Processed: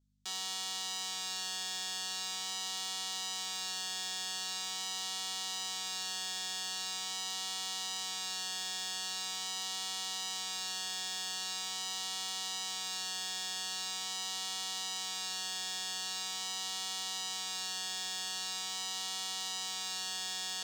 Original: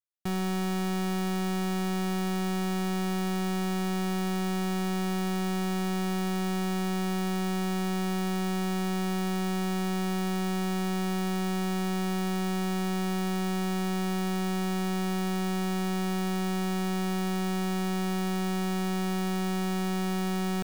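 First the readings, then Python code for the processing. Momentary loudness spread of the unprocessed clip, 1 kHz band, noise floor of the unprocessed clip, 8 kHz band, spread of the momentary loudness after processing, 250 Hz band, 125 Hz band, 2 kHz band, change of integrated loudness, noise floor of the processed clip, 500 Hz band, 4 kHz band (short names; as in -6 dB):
0 LU, -11.0 dB, -29 dBFS, +5.5 dB, 0 LU, -32.0 dB, n/a, -5.0 dB, -6.0 dB, -39 dBFS, -23.5 dB, +6.0 dB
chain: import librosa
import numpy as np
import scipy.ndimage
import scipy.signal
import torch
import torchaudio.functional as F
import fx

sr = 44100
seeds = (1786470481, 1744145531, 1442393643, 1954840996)

p1 = fx.octave_divider(x, sr, octaves=1, level_db=0.0)
p2 = scipy.signal.sosfilt(scipy.signal.butter(2, 950.0, 'highpass', fs=sr, output='sos'), p1)
p3 = fx.band_shelf(p2, sr, hz=5000.0, db=14.0, octaves=1.7)
p4 = fx.vibrato(p3, sr, rate_hz=0.43, depth_cents=9.7)
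p5 = fx.add_hum(p4, sr, base_hz=50, snr_db=34)
p6 = p5 + fx.room_early_taps(p5, sr, ms=(15, 28, 49), db=(-7.0, -16.5, -11.0), dry=0)
y = p6 * librosa.db_to_amplitude(-8.0)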